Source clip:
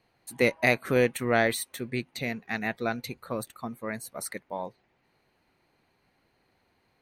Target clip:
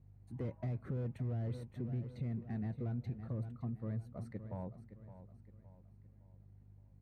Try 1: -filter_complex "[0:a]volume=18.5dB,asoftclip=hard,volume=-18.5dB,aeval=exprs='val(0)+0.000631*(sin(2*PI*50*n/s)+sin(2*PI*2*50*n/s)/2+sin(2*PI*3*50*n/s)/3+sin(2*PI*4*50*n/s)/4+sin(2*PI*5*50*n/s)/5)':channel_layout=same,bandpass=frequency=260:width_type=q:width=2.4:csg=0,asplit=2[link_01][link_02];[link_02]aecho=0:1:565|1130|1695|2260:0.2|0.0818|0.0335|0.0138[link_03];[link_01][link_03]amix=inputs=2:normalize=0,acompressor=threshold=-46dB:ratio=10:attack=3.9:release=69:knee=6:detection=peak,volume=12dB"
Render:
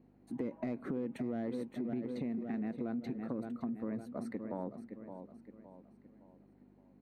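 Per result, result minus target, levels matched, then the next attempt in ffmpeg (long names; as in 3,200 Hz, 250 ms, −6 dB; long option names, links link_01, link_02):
125 Hz band −12.5 dB; gain into a clipping stage and back: distortion −7 dB
-filter_complex "[0:a]volume=18.5dB,asoftclip=hard,volume=-18.5dB,aeval=exprs='val(0)+0.000631*(sin(2*PI*50*n/s)+sin(2*PI*2*50*n/s)/2+sin(2*PI*3*50*n/s)/3+sin(2*PI*4*50*n/s)/4+sin(2*PI*5*50*n/s)/5)':channel_layout=same,bandpass=frequency=99:width_type=q:width=2.4:csg=0,asplit=2[link_01][link_02];[link_02]aecho=0:1:565|1130|1695|2260:0.2|0.0818|0.0335|0.0138[link_03];[link_01][link_03]amix=inputs=2:normalize=0,acompressor=threshold=-46dB:ratio=10:attack=3.9:release=69:knee=6:detection=peak,volume=12dB"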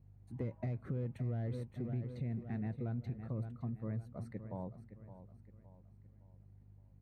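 gain into a clipping stage and back: distortion −7 dB
-filter_complex "[0:a]volume=27.5dB,asoftclip=hard,volume=-27.5dB,aeval=exprs='val(0)+0.000631*(sin(2*PI*50*n/s)+sin(2*PI*2*50*n/s)/2+sin(2*PI*3*50*n/s)/3+sin(2*PI*4*50*n/s)/4+sin(2*PI*5*50*n/s)/5)':channel_layout=same,bandpass=frequency=99:width_type=q:width=2.4:csg=0,asplit=2[link_01][link_02];[link_02]aecho=0:1:565|1130|1695|2260:0.2|0.0818|0.0335|0.0138[link_03];[link_01][link_03]amix=inputs=2:normalize=0,acompressor=threshold=-46dB:ratio=10:attack=3.9:release=69:knee=6:detection=peak,volume=12dB"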